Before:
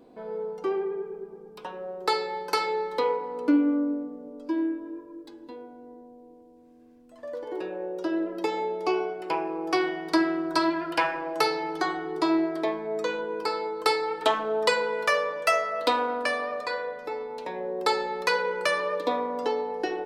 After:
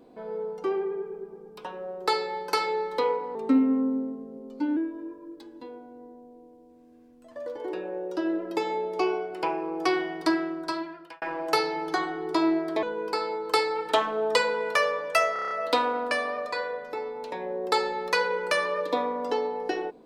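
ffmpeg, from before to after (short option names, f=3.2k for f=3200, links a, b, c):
-filter_complex "[0:a]asplit=11[a][b][c][d][e][f][g][h][i][j][k];[a]atrim=end=3.354[l];[b]atrim=start=3.35:end=4.64,asetpts=PTS-STARTPTS,asetrate=40131,aresample=44100,atrim=end_sample=62515,asetpts=PTS-STARTPTS[m];[c]atrim=start=4.636:end=11.09,asetpts=PTS-STARTPTS,afade=t=out:st=5.364:d=1.09[n];[d]atrim=start=11.09:end=12.702,asetpts=PTS-STARTPTS,afade=t=in:d=0.004:c=hsin[o];[e]atrim=start=13.148:end=15.682[p];[f]atrim=start=15.648:end=15.682[q];[g]atrim=start=15.648:end=15.682[r];[h]atrim=start=15.648:end=15.682[s];[i]atrim=start=15.648:end=15.682[t];[j]atrim=start=15.648:end=15.682[u];[k]atrim=start=15.648[v];[l][m]acrossfade=d=0.004:c1=hsin:c2=hsin[w];[n][o]concat=n=2:v=0:a=1[x];[w][x]acrossfade=d=0.004:c1=hsin:c2=hsin[y];[y][p]acrossfade=d=0.004:c1=hsin:c2=hsin[z];[z][q]acrossfade=d=0.004:c1=hsin:c2=hsin[aa];[aa][r]acrossfade=d=0.004:c1=hsin:c2=hsin[ab];[ab][s]acrossfade=d=0.004:c1=hsin:c2=hsin[ac];[ac][t]acrossfade=d=0.004:c1=hsin:c2=hsin[ad];[ad][u]acrossfade=d=0.004:c1=hsin:c2=hsin[ae];[ae][v]acrossfade=d=0.004:c1=hsin:c2=hsin"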